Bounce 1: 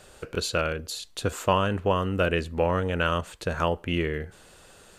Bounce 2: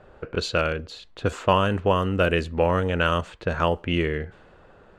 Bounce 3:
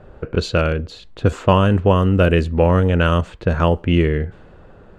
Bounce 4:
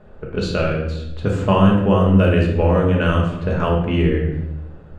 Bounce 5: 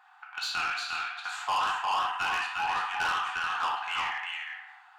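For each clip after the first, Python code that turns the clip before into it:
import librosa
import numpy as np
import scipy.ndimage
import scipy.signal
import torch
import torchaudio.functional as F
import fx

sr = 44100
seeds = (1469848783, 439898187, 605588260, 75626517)

y1 = fx.env_lowpass(x, sr, base_hz=1300.0, full_db=-19.5)
y1 = y1 * librosa.db_to_amplitude(3.0)
y2 = fx.low_shelf(y1, sr, hz=400.0, db=10.0)
y2 = y2 * librosa.db_to_amplitude(1.5)
y3 = fx.room_shoebox(y2, sr, seeds[0], volume_m3=360.0, walls='mixed', distance_m=1.4)
y3 = y3 * librosa.db_to_amplitude(-5.5)
y4 = fx.brickwall_highpass(y3, sr, low_hz=710.0)
y4 = y4 + 10.0 ** (-4.5 / 20.0) * np.pad(y4, (int(354 * sr / 1000.0), 0))[:len(y4)]
y4 = 10.0 ** (-24.0 / 20.0) * np.tanh(y4 / 10.0 ** (-24.0 / 20.0))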